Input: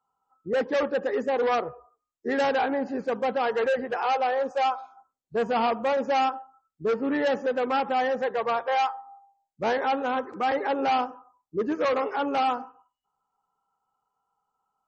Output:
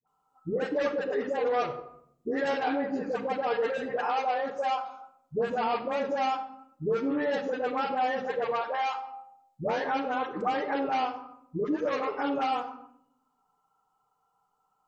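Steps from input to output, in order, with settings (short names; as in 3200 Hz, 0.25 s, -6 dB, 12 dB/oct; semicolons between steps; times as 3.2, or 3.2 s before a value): compressor 4:1, threshold -32 dBFS, peak gain reduction 9.5 dB; dispersion highs, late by 73 ms, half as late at 680 Hz; on a send: reverb RT60 0.75 s, pre-delay 7 ms, DRR 6 dB; on the sum: gain +3.5 dB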